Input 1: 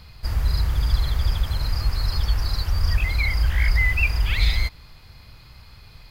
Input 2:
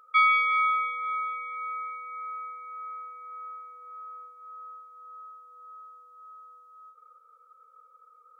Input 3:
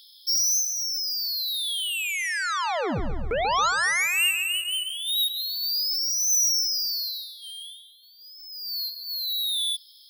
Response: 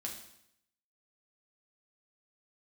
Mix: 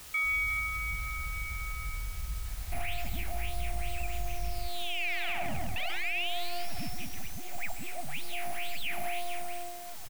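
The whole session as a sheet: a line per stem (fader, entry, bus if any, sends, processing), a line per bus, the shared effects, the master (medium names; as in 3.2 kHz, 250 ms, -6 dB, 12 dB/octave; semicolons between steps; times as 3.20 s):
-5.5 dB, 0.00 s, bus A, no send, comb filter that takes the minimum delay 0.78 ms; amplifier tone stack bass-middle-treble 10-0-1; saturation -23 dBFS, distortion -15 dB
1.93 s -9 dB -> 2.24 s -18.5 dB, 0.00 s, bus A, no send, none
-0.5 dB, 2.45 s, no bus, no send, full-wave rectifier; treble shelf 7.6 kHz +10 dB; saturation -22.5 dBFS, distortion -12 dB
bus A: 0.0 dB, peak limiter -29.5 dBFS, peak gain reduction 9.5 dB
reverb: none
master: FFT filter 260 Hz 0 dB, 480 Hz -17 dB, 710 Hz +11 dB, 1 kHz -6 dB, 1.6 kHz -1 dB, 2.4 kHz +14 dB, 6.1 kHz -19 dB; word length cut 8-bit, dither triangular; peak limiter -23.5 dBFS, peak gain reduction 7 dB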